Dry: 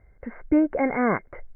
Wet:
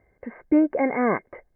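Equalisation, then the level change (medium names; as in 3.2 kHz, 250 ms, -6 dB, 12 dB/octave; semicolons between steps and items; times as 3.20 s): high-pass 200 Hz 6 dB/octave; Butterworth band-stop 1.4 kHz, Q 7.2; peaking EQ 360 Hz +3 dB 1.5 oct; 0.0 dB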